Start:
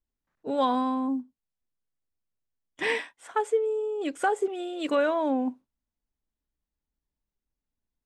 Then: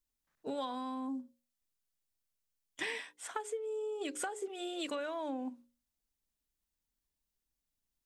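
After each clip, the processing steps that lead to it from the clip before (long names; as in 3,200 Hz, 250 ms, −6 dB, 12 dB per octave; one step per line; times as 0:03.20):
high-shelf EQ 2,700 Hz +11 dB
mains-hum notches 60/120/180/240/300/360/420/480/540 Hz
downward compressor 12 to 1, threshold −31 dBFS, peak gain reduction 13.5 dB
level −4 dB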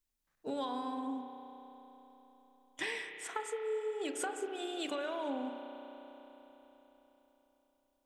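convolution reverb RT60 4.1 s, pre-delay 32 ms, DRR 5 dB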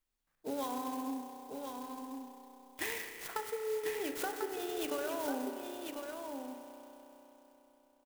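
single-tap delay 1,045 ms −6 dB
converter with an unsteady clock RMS 0.05 ms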